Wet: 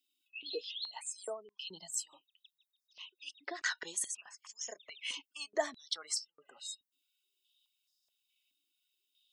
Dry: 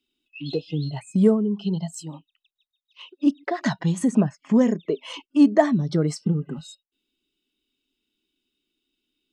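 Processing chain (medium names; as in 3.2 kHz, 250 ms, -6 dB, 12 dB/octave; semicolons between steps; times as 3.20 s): differentiator; spectral gate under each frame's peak -30 dB strong; step-sequenced high-pass 4.7 Hz 270–5100 Hz; trim +1.5 dB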